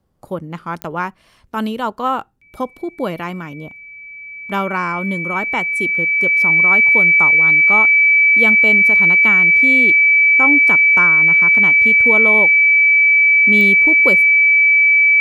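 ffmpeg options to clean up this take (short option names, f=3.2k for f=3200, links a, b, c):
-af "adeclick=t=4,bandreject=f=2.3k:w=30"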